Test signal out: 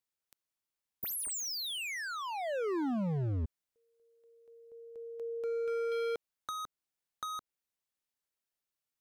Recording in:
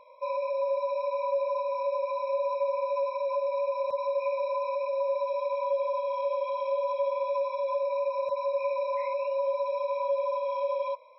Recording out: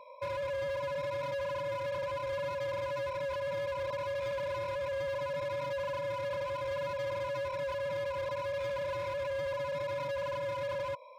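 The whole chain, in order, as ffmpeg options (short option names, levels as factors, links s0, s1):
-filter_complex "[0:a]volume=50.1,asoftclip=hard,volume=0.02,acrossover=split=490[s0][s1];[s1]acompressor=threshold=0.01:ratio=4[s2];[s0][s2]amix=inputs=2:normalize=0,volume=1.33"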